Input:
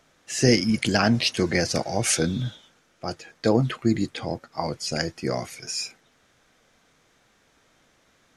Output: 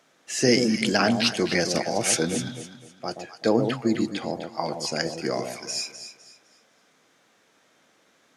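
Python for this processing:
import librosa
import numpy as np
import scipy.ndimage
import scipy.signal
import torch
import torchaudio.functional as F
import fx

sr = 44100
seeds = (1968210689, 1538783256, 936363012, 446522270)

p1 = scipy.signal.sosfilt(scipy.signal.butter(2, 200.0, 'highpass', fs=sr, output='sos'), x)
y = p1 + fx.echo_alternate(p1, sr, ms=127, hz=830.0, feedback_pct=55, wet_db=-5.5, dry=0)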